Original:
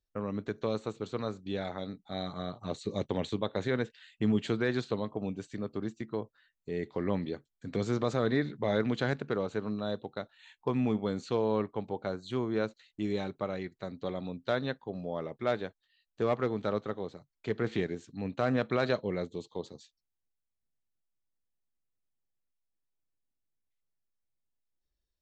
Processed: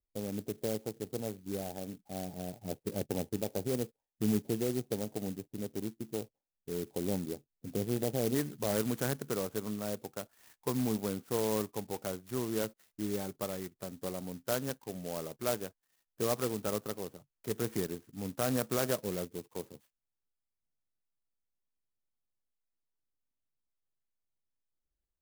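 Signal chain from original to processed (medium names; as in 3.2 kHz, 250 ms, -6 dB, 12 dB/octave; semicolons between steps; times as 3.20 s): elliptic low-pass 830 Hz, stop band 40 dB, from 8.34 s 3.2 kHz; sampling jitter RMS 0.11 ms; trim -2 dB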